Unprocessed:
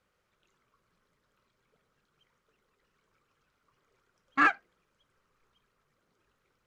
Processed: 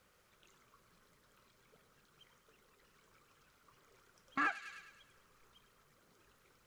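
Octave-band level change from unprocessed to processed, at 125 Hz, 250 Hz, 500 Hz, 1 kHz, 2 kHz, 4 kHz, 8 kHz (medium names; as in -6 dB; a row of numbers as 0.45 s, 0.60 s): -5.0 dB, -10.0 dB, -10.0 dB, -11.0 dB, -10.5 dB, -7.0 dB, no reading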